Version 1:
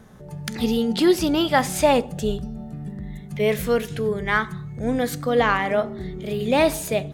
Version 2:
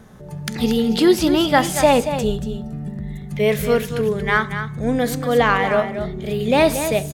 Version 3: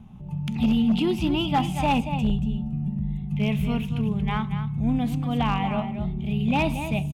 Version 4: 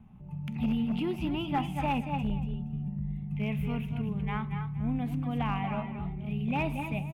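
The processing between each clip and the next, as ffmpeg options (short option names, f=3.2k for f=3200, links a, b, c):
-af "aecho=1:1:232:0.335,volume=3dB"
-af "firequalizer=gain_entry='entry(200,0);entry(480,-23);entry(810,-5);entry(1700,-24);entry(2600,-2);entry(4300,-20)':delay=0.05:min_phase=1,asoftclip=type=hard:threshold=-17dB,volume=1.5dB"
-filter_complex "[0:a]highshelf=f=3.4k:t=q:w=1.5:g=-12.5,acrossover=split=720[a][b];[b]aexciter=amount=3.2:drive=2.2:freq=4.5k[c];[a][c]amix=inputs=2:normalize=0,asplit=2[d][e];[e]adelay=239.1,volume=-9dB,highshelf=f=4k:g=-5.38[f];[d][f]amix=inputs=2:normalize=0,volume=-8dB"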